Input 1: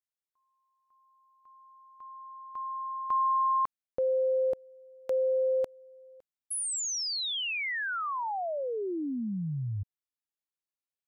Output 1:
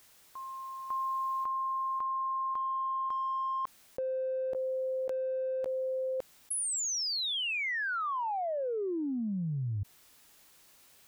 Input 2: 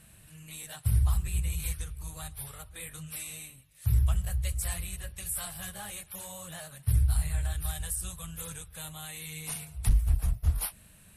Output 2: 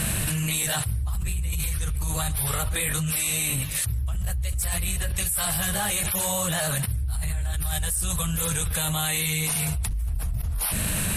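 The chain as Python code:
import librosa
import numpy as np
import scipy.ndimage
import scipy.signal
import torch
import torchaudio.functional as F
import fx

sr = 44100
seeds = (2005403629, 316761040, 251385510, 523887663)

p1 = 10.0 ** (-31.5 / 20.0) * np.tanh(x / 10.0 ** (-31.5 / 20.0))
p2 = x + F.gain(torch.from_numpy(p1), -10.0).numpy()
p3 = fx.env_flatten(p2, sr, amount_pct=100)
y = F.gain(torch.from_numpy(p3), -8.0).numpy()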